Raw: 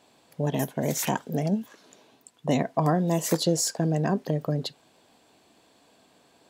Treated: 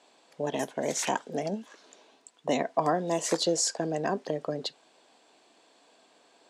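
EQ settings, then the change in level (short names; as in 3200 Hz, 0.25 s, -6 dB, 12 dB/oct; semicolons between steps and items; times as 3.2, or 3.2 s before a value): HPF 340 Hz 12 dB/oct; LPF 8800 Hz 24 dB/oct; 0.0 dB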